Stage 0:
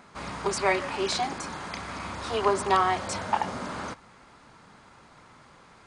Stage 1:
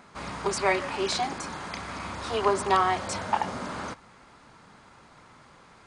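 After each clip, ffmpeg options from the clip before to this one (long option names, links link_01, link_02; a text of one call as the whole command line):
ffmpeg -i in.wav -af anull out.wav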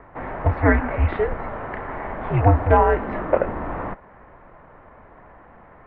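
ffmpeg -i in.wav -af "lowshelf=frequency=190:width_type=q:width=3:gain=-13.5,highpass=frequency=280:width_type=q:width=0.5412,highpass=frequency=280:width_type=q:width=1.307,lowpass=frequency=2400:width_type=q:width=0.5176,lowpass=frequency=2400:width_type=q:width=0.7071,lowpass=frequency=2400:width_type=q:width=1.932,afreqshift=-310,volume=6.5dB" out.wav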